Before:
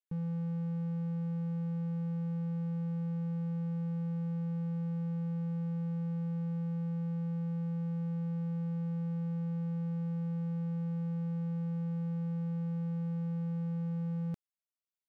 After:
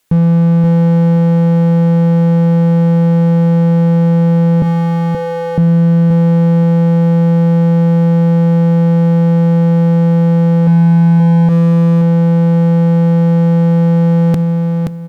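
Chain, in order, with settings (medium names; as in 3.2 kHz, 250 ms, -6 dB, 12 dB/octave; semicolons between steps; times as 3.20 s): 4.62–5.58 s: high-pass 390 Hz 24 dB/octave; 10.67–11.49 s: tilt shelf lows +5 dB, about 1.4 kHz; Chebyshev shaper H 4 -30 dB, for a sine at -29.5 dBFS; feedback delay 526 ms, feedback 25%, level -8.5 dB; on a send at -20 dB: reverberation, pre-delay 3 ms; on the sum: loudness maximiser +35 dB; trim -2.5 dB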